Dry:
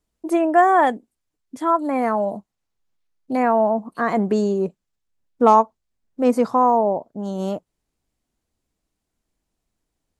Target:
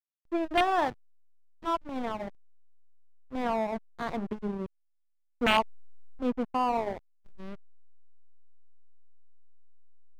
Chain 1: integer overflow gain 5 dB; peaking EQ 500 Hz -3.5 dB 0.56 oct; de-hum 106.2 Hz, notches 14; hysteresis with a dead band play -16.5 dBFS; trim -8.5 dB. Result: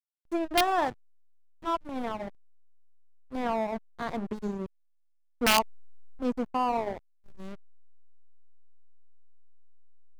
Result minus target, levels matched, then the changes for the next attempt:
4 kHz band +3.0 dB
add after integer overflow: steep low-pass 3.4 kHz 36 dB/octave

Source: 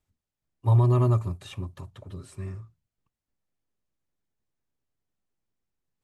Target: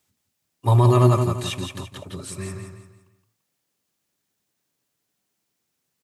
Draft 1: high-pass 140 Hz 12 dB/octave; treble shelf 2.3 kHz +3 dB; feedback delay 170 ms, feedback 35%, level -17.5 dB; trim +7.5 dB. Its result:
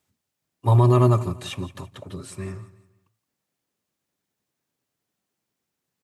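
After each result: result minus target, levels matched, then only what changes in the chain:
echo-to-direct -11 dB; 4 kHz band -4.5 dB
change: feedback delay 170 ms, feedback 35%, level -6.5 dB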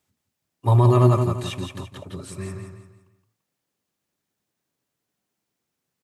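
4 kHz band -4.0 dB
change: treble shelf 2.3 kHz +9 dB

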